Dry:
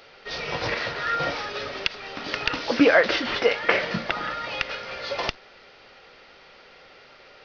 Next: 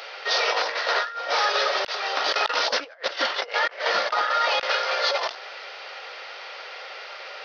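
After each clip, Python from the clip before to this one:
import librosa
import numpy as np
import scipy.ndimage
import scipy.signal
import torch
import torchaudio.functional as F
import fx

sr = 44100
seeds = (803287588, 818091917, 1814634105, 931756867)

y = scipy.signal.sosfilt(scipy.signal.butter(4, 530.0, 'highpass', fs=sr, output='sos'), x)
y = fx.over_compress(y, sr, threshold_db=-32.0, ratio=-0.5)
y = fx.dynamic_eq(y, sr, hz=2400.0, q=1.9, threshold_db=-45.0, ratio=4.0, max_db=-6)
y = y * librosa.db_to_amplitude(8.5)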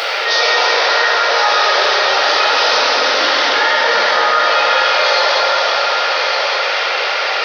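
y = x + 10.0 ** (-12.5 / 20.0) * np.pad(x, (int(1162 * sr / 1000.0), 0))[:len(x)]
y = fx.rev_plate(y, sr, seeds[0], rt60_s=4.0, hf_ratio=0.95, predelay_ms=0, drr_db=-8.0)
y = fx.env_flatten(y, sr, amount_pct=70)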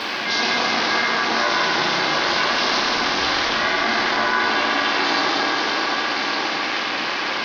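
y = x + 10.0 ** (-13.5 / 20.0) * np.pad(x, (int(542 * sr / 1000.0), 0))[:len(x)]
y = y * np.sin(2.0 * np.pi * 240.0 * np.arange(len(y)) / sr)
y = y * librosa.db_to_amplitude(-4.0)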